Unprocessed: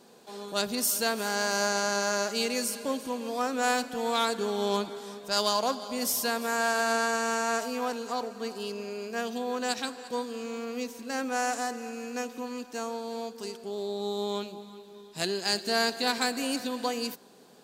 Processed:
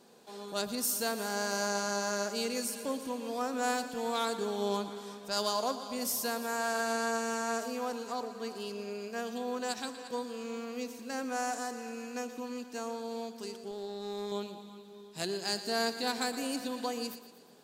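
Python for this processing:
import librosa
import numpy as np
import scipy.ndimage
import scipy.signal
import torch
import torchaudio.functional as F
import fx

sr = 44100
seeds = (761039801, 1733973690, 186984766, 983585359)

p1 = fx.dynamic_eq(x, sr, hz=2500.0, q=0.75, threshold_db=-39.0, ratio=4.0, max_db=-4)
p2 = fx.tube_stage(p1, sr, drive_db=29.0, bias=0.5, at=(13.71, 14.32))
p3 = p2 + fx.echo_feedback(p2, sr, ms=118, feedback_pct=52, wet_db=-13.5, dry=0)
y = p3 * librosa.db_to_amplitude(-4.0)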